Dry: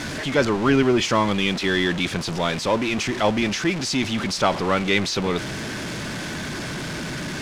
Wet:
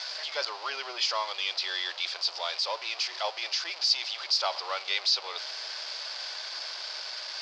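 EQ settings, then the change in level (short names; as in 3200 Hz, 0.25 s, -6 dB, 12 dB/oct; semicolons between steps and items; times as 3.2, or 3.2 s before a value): inverse Chebyshev high-pass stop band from 240 Hz, stop band 50 dB; ladder low-pass 5100 Hz, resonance 75%; bell 1800 Hz -4.5 dB 0.82 oct; +3.5 dB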